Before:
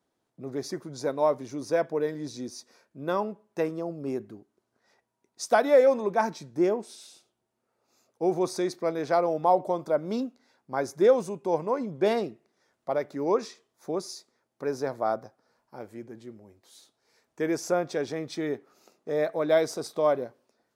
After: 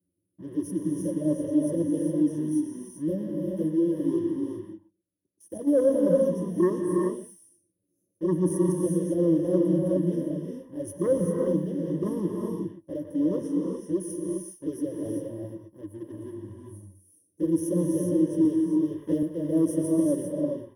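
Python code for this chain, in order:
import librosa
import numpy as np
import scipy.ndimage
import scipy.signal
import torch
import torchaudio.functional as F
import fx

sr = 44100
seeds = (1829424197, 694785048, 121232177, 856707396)

y = fx.median_filter(x, sr, points=25, at=(10.93, 11.52))
y = fx.transient(y, sr, attack_db=-4, sustain_db=0)
y = fx.env_flanger(y, sr, rest_ms=10.9, full_db=-20.0)
y = scipy.signal.sosfilt(scipy.signal.ellip(3, 1.0, 50, [370.0, 9600.0], 'bandstop', fs=sr, output='sos'), y)
y = y + 10.0 ** (-14.0 / 20.0) * np.pad(y, (int(118 * sr / 1000.0), 0))[:len(y)]
y = fx.leveller(y, sr, passes=1)
y = fx.ripple_eq(y, sr, per_octave=1.2, db=17)
y = fx.level_steps(y, sr, step_db=19, at=(4.32, 5.66), fade=0.02)
y = scipy.signal.sosfilt(scipy.signal.butter(2, 43.0, 'highpass', fs=sr, output='sos'), y)
y = fx.peak_eq(y, sr, hz=86.0, db=8.5, octaves=0.32)
y = fx.rev_gated(y, sr, seeds[0], gate_ms=430, shape='rising', drr_db=0.0)
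y = fx.band_squash(y, sr, depth_pct=100, at=(18.45, 19.23))
y = y * 10.0 ** (3.5 / 20.0)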